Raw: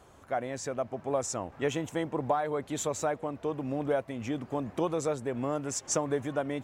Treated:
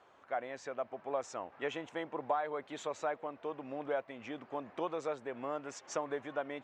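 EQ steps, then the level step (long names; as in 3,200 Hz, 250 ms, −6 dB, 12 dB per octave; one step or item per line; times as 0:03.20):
high-pass filter 260 Hz 6 dB per octave
low-pass filter 3,200 Hz 12 dB per octave
low-shelf EQ 340 Hz −11.5 dB
−2.0 dB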